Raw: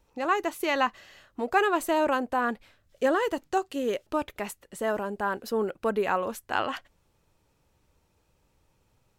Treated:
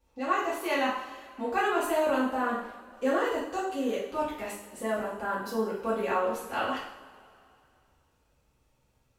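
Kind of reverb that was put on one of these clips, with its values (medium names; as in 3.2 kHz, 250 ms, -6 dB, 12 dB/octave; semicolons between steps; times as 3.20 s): two-slope reverb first 0.63 s, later 2.6 s, from -18 dB, DRR -9 dB; trim -11 dB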